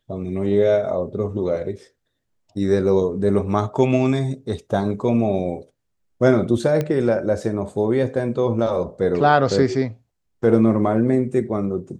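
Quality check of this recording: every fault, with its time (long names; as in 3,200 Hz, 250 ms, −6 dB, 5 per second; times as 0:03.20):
0:06.81: click −11 dBFS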